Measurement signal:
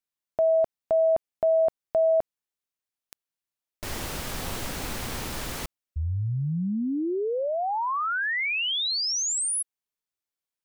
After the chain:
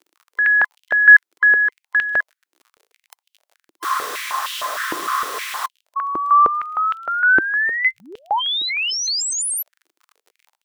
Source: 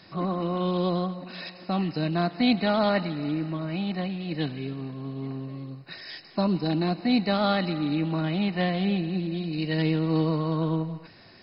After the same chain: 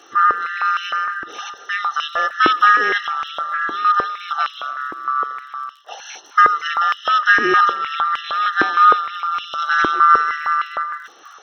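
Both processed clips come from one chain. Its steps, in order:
neighbouring bands swapped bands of 1,000 Hz
surface crackle 41 per second −43 dBFS
high-pass on a step sequencer 6.5 Hz 330–3,000 Hz
level +4 dB

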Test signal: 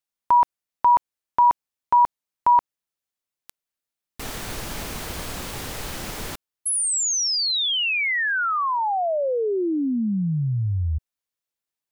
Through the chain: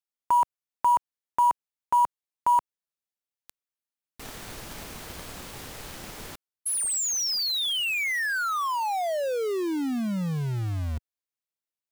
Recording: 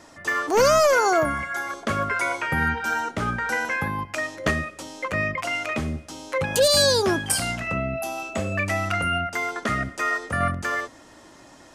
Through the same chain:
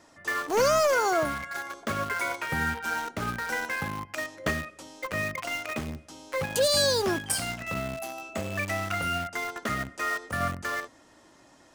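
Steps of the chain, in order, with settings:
low-shelf EQ 68 Hz −3.5 dB
in parallel at −8 dB: bit reduction 4 bits
on the sum: level −8 dB

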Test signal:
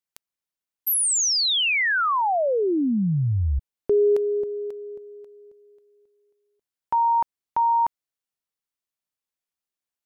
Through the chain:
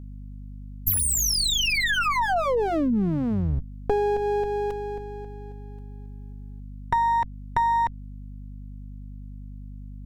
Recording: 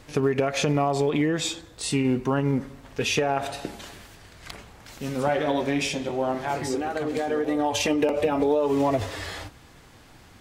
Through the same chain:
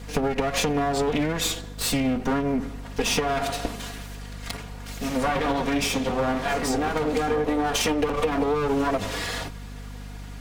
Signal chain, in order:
lower of the sound and its delayed copy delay 4.2 ms
downward compressor, threshold −27 dBFS
mains hum 50 Hz, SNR 12 dB
level +6.5 dB

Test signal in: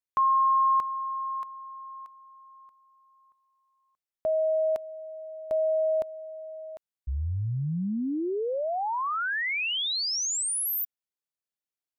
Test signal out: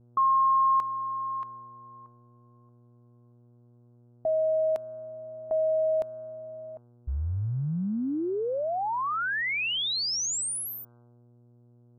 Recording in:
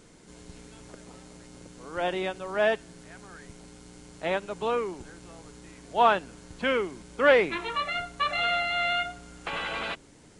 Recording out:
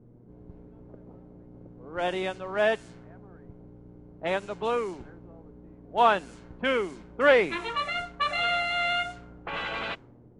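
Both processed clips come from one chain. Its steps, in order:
hum with harmonics 120 Hz, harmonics 13, −57 dBFS −6 dB per octave
low-pass that shuts in the quiet parts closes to 360 Hz, open at −25.5 dBFS

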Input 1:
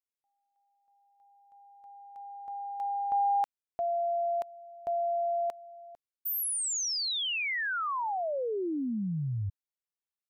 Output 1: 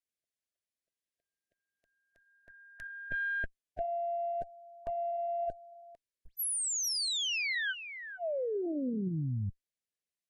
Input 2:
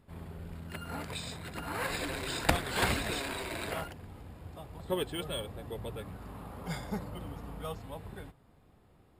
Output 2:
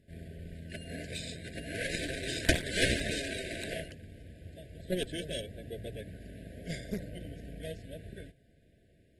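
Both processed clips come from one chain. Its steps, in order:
harmonic generator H 2 −7 dB, 4 −45 dB, 6 −10 dB, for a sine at −8 dBFS
in parallel at −6 dB: soft clipping −16.5 dBFS
on the sum: linear-phase brick-wall band-stop 700–1,500 Hz
level −5 dB
AAC 32 kbit/s 48,000 Hz

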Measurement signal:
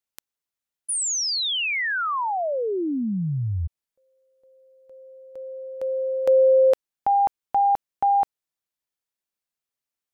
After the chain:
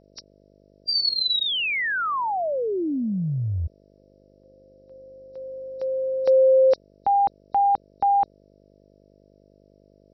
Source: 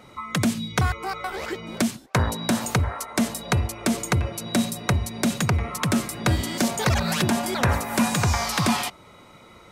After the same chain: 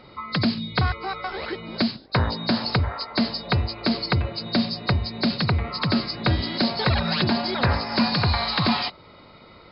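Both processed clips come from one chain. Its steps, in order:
hearing-aid frequency compression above 3,700 Hz 4 to 1
hum with harmonics 50 Hz, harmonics 13, −57 dBFS 0 dB per octave

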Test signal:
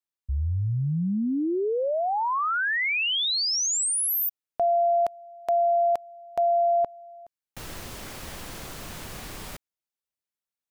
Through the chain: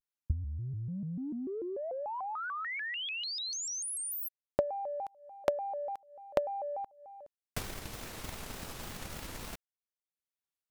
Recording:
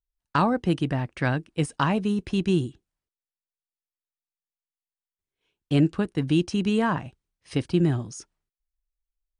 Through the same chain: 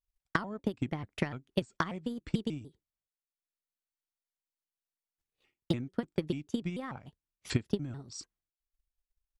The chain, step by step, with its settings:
downward compressor 10 to 1, threshold −31 dBFS
transient designer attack +11 dB, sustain −7 dB
pitch modulation by a square or saw wave square 3.4 Hz, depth 250 cents
level −5 dB

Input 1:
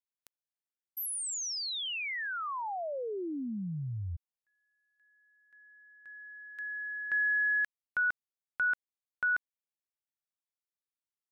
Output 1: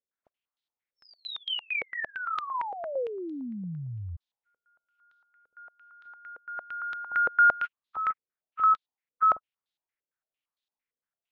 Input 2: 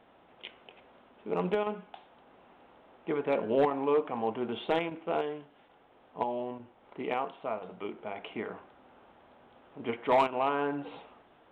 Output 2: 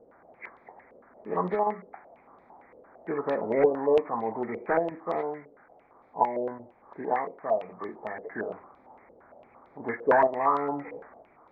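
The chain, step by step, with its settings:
hearing-aid frequency compression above 1,000 Hz 1.5 to 1
low-pass on a step sequencer 8.8 Hz 490–3,700 Hz

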